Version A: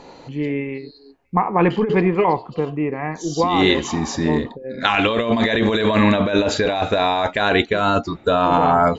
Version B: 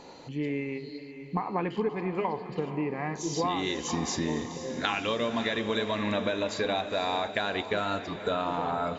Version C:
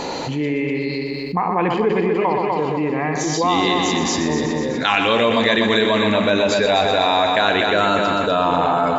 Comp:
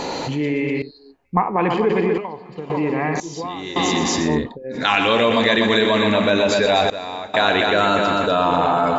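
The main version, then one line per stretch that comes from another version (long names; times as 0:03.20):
C
0:00.82–0:01.56: punch in from A
0:02.18–0:02.70: punch in from B
0:03.20–0:03.76: punch in from B
0:04.29–0:04.79: punch in from A, crossfade 0.16 s
0:06.90–0:07.34: punch in from B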